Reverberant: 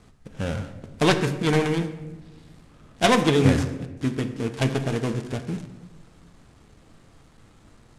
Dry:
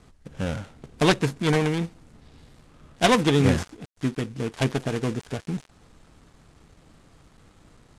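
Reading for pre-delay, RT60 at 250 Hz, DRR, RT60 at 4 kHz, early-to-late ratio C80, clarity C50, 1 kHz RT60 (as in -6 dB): 9 ms, 1.5 s, 8.0 dB, 0.70 s, 12.5 dB, 10.5 dB, 0.90 s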